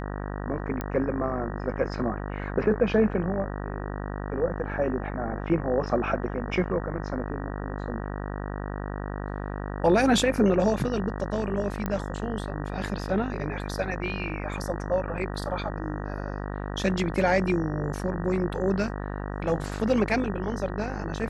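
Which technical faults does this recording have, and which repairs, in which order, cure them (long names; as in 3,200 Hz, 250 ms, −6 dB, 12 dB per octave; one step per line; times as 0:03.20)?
mains buzz 50 Hz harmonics 38 −33 dBFS
0:00.81: click −17 dBFS
0:11.86: click −16 dBFS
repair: click removal
hum removal 50 Hz, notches 38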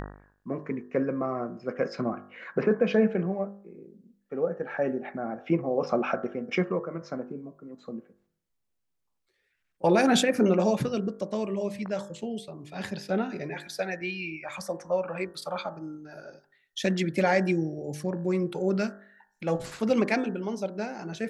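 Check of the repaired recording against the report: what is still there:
none of them is left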